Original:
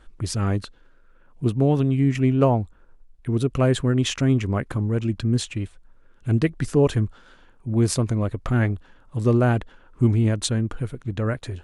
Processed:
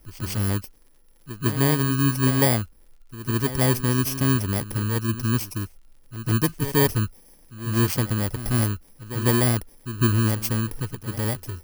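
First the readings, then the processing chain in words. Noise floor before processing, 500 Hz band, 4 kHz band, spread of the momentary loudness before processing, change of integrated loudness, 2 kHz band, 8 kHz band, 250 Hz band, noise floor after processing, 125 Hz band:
−53 dBFS, −4.0 dB, +1.5 dB, 10 LU, −0.5 dB, +3.5 dB, +4.0 dB, −2.0 dB, −54 dBFS, −1.5 dB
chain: samples in bit-reversed order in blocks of 32 samples
surface crackle 61 per second −46 dBFS
echo ahead of the sound 152 ms −13 dB
level −1.5 dB

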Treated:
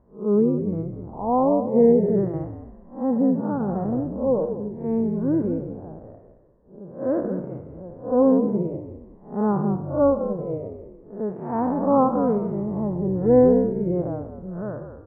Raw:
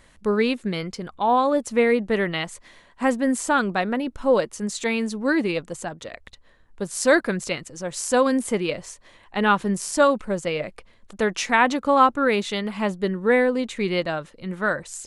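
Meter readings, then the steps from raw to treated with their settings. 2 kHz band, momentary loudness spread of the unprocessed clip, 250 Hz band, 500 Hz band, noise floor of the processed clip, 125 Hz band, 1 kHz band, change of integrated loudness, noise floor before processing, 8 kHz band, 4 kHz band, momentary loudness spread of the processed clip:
below −25 dB, 12 LU, +3.0 dB, +1.0 dB, −48 dBFS, +6.0 dB, −5.5 dB, 0.0 dB, −54 dBFS, below −40 dB, below −40 dB, 18 LU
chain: spectrum smeared in time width 177 ms
high-pass filter 340 Hz 6 dB per octave
gate on every frequency bin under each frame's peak −25 dB strong
low-pass filter 1,000 Hz 24 dB per octave
spectral tilt −4 dB per octave
floating-point word with a short mantissa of 8 bits
echo with shifted repeats 192 ms, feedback 39%, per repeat −57 Hz, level −7 dB
boost into a limiter +8.5 dB
expander for the loud parts 1.5 to 1, over −23 dBFS
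level −4.5 dB

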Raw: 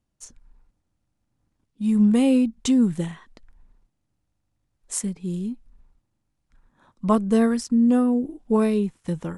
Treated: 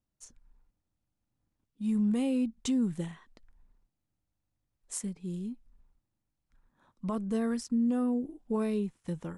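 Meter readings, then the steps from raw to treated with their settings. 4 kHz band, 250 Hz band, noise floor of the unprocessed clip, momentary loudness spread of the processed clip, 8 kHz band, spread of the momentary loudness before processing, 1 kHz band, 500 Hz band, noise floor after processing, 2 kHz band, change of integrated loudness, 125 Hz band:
−9.5 dB, −10.0 dB, −76 dBFS, 11 LU, −9.0 dB, 12 LU, −13.0 dB, −11.0 dB, −84 dBFS, −10.5 dB, −10.0 dB, −9.0 dB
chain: brickwall limiter −14 dBFS, peak gain reduction 8 dB
level −8.5 dB

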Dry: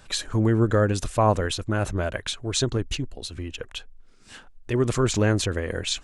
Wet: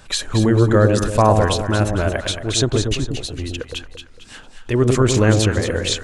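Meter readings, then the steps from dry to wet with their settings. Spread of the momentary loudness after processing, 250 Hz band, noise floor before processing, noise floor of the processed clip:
13 LU, +7.0 dB, −50 dBFS, −43 dBFS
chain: delay that swaps between a low-pass and a high-pass 113 ms, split 820 Hz, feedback 61%, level −3.5 dB
level +5.5 dB

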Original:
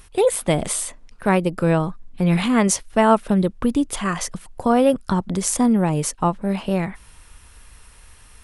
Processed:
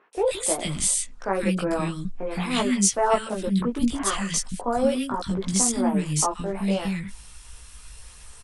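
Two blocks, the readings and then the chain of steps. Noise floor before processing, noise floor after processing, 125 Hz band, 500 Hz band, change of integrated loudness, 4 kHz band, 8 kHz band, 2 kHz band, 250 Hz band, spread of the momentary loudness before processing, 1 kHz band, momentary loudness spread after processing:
−49 dBFS, −46 dBFS, −6.5 dB, −5.5 dB, −4.0 dB, +1.0 dB, +2.0 dB, −4.5 dB, −5.5 dB, 8 LU, −5.0 dB, 8 LU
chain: low-pass filter 9,200 Hz 24 dB per octave
high-shelf EQ 3,400 Hz +10.5 dB
in parallel at +2.5 dB: brickwall limiter −14.5 dBFS, peak gain reduction 17 dB
on the sum: multi-voice chorus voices 6, 1 Hz, delay 18 ms, depth 3 ms
three-band delay without the direct sound mids, highs, lows 130/170 ms, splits 280/1,800 Hz
level −6 dB

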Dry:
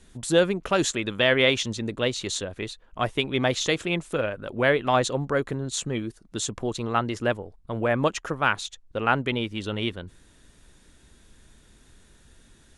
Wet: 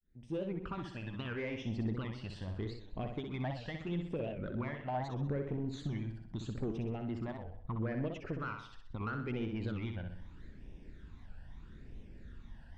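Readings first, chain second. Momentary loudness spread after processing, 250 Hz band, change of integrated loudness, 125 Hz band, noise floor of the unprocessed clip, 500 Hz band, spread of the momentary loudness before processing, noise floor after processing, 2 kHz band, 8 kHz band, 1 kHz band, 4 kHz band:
17 LU, −9.5 dB, −14.0 dB, −6.0 dB, −57 dBFS, −16.5 dB, 10 LU, −54 dBFS, −20.0 dB, below −30 dB, −16.0 dB, −23.5 dB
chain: fade in at the beginning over 1.66 s
downward compressor 5 to 1, threshold −34 dBFS, peak gain reduction 16.5 dB
all-pass phaser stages 12, 0.77 Hz, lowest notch 370–1,400 Hz
soft clipping −33 dBFS, distortion −14 dB
head-to-tape spacing loss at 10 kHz 36 dB
flutter between parallel walls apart 10.8 metres, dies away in 0.62 s
wow of a warped record 78 rpm, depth 160 cents
level +4.5 dB

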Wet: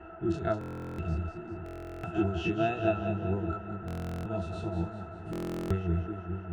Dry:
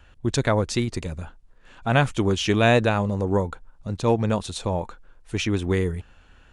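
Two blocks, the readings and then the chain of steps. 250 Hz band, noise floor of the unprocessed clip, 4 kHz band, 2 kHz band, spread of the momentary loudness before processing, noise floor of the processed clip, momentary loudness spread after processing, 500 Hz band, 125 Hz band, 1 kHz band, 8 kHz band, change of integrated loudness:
−7.5 dB, −53 dBFS, −18.0 dB, −13.5 dB, 15 LU, −44 dBFS, 10 LU, −9.5 dB, −8.5 dB, −9.5 dB, below −20 dB, −10.0 dB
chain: every bin's largest magnitude spread in time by 60 ms
high-shelf EQ 2,500 Hz +8.5 dB
in parallel at +2 dB: downward compressor, threshold −28 dBFS, peak gain reduction 17 dB
on the sum: shaped tremolo triangle 4.6 Hz, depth 65%
noise in a band 230–1,800 Hz −33 dBFS
resonances in every octave E, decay 0.1 s
on a send: echo with a time of its own for lows and highs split 390 Hz, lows 616 ms, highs 197 ms, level −7.5 dB
on the sum: buffer that repeats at 0:00.59/0:01.64/0:03.86/0:05.31, samples 1,024, times 16
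level −3 dB

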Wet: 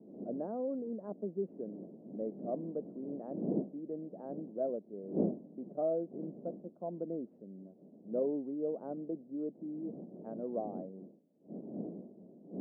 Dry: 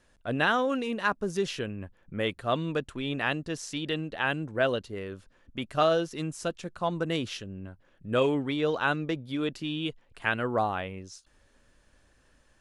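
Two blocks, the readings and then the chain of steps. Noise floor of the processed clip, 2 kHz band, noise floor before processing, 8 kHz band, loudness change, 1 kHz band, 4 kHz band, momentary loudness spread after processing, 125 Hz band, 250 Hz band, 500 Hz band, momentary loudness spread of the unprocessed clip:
−61 dBFS, below −40 dB, −65 dBFS, below −35 dB, −9.5 dB, −17.5 dB, below −40 dB, 14 LU, −12.5 dB, −5.5 dB, −7.5 dB, 13 LU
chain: adaptive Wiener filter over 9 samples
wind on the microphone 240 Hz −33 dBFS
elliptic band-pass filter 190–650 Hz, stop band 70 dB
level −7 dB

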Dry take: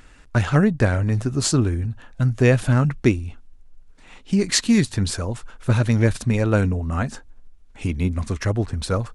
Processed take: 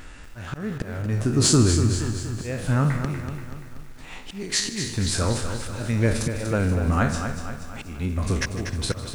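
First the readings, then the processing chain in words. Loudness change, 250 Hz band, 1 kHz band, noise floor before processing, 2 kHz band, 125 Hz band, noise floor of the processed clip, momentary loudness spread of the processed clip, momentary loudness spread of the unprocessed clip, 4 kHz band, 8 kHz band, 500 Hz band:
−3.0 dB, −4.5 dB, −1.0 dB, −48 dBFS, −3.0 dB, −3.5 dB, −40 dBFS, 17 LU, 10 LU, +0.5 dB, +2.0 dB, −4.5 dB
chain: peak hold with a decay on every bin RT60 0.39 s
in parallel at −3 dB: downward compressor, threshold −28 dBFS, peak gain reduction 16.5 dB
on the sum: volume swells 577 ms
soft clipping −6 dBFS, distortion −27 dB
on a send: feedback echo with a high-pass in the loop 153 ms, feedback 69%, high-pass 320 Hz, level −16 dB
on the sum: feedback echo at a low word length 240 ms, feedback 55%, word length 8 bits, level −8 dB

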